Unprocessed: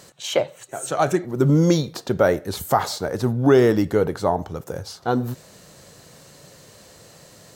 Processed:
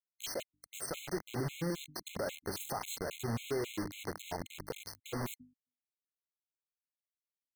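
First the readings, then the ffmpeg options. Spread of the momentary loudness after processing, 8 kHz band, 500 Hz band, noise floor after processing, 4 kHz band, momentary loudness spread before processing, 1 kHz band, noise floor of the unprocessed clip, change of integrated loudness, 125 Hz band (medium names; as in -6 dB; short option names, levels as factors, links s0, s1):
8 LU, -10.0 dB, -20.5 dB, under -85 dBFS, -12.5 dB, 15 LU, -19.0 dB, -49 dBFS, -18.5 dB, -19.5 dB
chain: -filter_complex "[0:a]acompressor=threshold=0.0631:ratio=5,bandreject=f=3800:w=11,asplit=2[s0][s1];[s1]adelay=845,lowpass=f=3700:p=1,volume=0.1,asplit=2[s2][s3];[s3]adelay=845,lowpass=f=3700:p=1,volume=0.53,asplit=2[s4][s5];[s5]adelay=845,lowpass=f=3700:p=1,volume=0.53,asplit=2[s6][s7];[s7]adelay=845,lowpass=f=3700:p=1,volume=0.53[s8];[s2][s4][s6][s8]amix=inputs=4:normalize=0[s9];[s0][s9]amix=inputs=2:normalize=0,acrusher=bits=4:mix=0:aa=0.000001,alimiter=limit=0.0944:level=0:latency=1:release=53,bandreject=f=50:t=h:w=6,bandreject=f=100:t=h:w=6,bandreject=f=150:t=h:w=6,bandreject=f=200:t=h:w=6,bandreject=f=250:t=h:w=6,bandreject=f=300:t=h:w=6,afftfilt=real='re*gt(sin(2*PI*3.7*pts/sr)*(1-2*mod(floor(b*sr/1024/2100),2)),0)':imag='im*gt(sin(2*PI*3.7*pts/sr)*(1-2*mod(floor(b*sr/1024/2100),2)),0)':win_size=1024:overlap=0.75,volume=0.531"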